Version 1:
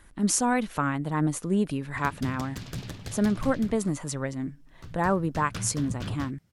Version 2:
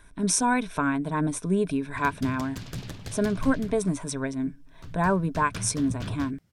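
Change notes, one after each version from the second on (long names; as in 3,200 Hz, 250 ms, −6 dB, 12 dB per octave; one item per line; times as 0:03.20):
speech: add EQ curve with evenly spaced ripples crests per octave 1.6, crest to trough 10 dB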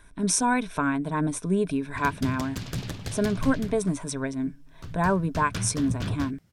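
background +4.0 dB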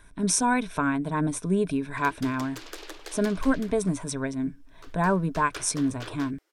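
background: add Chebyshev high-pass with heavy ripple 310 Hz, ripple 3 dB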